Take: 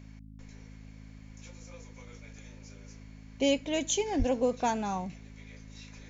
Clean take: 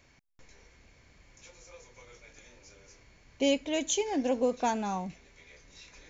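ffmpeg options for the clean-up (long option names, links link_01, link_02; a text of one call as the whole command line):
ffmpeg -i in.wav -filter_complex "[0:a]bandreject=frequency=53:width_type=h:width=4,bandreject=frequency=106:width_type=h:width=4,bandreject=frequency=159:width_type=h:width=4,bandreject=frequency=212:width_type=h:width=4,bandreject=frequency=265:width_type=h:width=4,asplit=3[link_01][link_02][link_03];[link_01]afade=type=out:start_time=4.18:duration=0.02[link_04];[link_02]highpass=frequency=140:width=0.5412,highpass=frequency=140:width=1.3066,afade=type=in:start_time=4.18:duration=0.02,afade=type=out:start_time=4.3:duration=0.02[link_05];[link_03]afade=type=in:start_time=4.3:duration=0.02[link_06];[link_04][link_05][link_06]amix=inputs=3:normalize=0" out.wav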